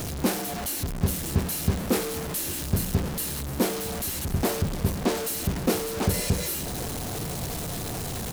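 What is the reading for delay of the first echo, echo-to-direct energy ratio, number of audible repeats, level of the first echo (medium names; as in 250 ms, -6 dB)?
1126 ms, -16.0 dB, 1, -16.0 dB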